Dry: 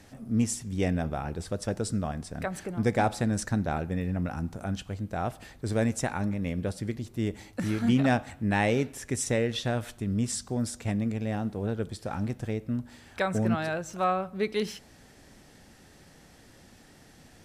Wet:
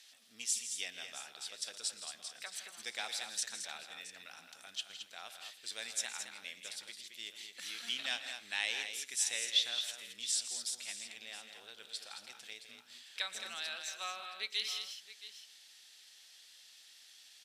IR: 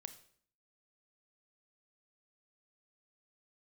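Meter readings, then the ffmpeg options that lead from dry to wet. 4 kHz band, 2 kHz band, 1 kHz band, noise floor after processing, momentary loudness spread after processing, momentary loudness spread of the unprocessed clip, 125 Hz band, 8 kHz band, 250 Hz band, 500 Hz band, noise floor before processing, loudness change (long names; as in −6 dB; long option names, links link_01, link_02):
+5.5 dB, −6.0 dB, −17.5 dB, −60 dBFS, 21 LU, 8 LU, below −40 dB, +0.5 dB, −36.5 dB, −25.0 dB, −55 dBFS, −8.5 dB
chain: -filter_complex "[0:a]bandpass=frequency=3500:width_type=q:width=2.3:csg=0,aemphasis=mode=production:type=riaa,asplit=2[link_01][link_02];[link_02]aecho=0:1:117|161|218|671:0.126|0.251|0.398|0.188[link_03];[link_01][link_03]amix=inputs=2:normalize=0"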